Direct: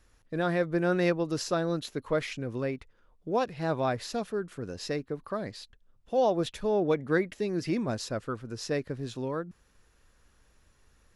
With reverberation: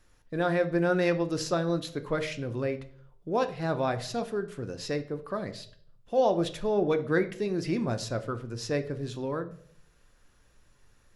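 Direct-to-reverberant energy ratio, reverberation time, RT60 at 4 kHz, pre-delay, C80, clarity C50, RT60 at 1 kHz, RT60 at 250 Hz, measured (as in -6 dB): 8.0 dB, 0.55 s, 0.45 s, 6 ms, 18.5 dB, 14.5 dB, 0.45 s, 0.70 s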